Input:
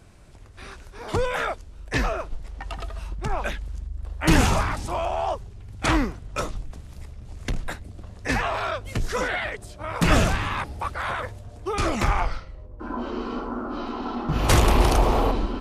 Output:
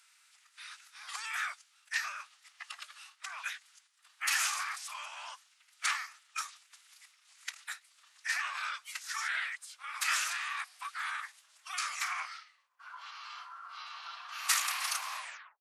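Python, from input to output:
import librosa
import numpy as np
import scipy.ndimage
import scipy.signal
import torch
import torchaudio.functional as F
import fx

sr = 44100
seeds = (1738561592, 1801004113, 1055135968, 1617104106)

y = fx.tape_stop_end(x, sr, length_s=0.47)
y = scipy.signal.sosfilt(scipy.signal.bessel(8, 2000.0, 'highpass', norm='mag', fs=sr, output='sos'), y)
y = fx.dynamic_eq(y, sr, hz=3200.0, q=2.2, threshold_db=-47.0, ratio=4.0, max_db=-6)
y = fx.pitch_keep_formants(y, sr, semitones=-2.0)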